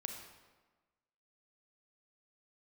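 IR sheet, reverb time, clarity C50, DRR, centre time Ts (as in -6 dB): 1.3 s, 4.5 dB, 3.5 dB, 38 ms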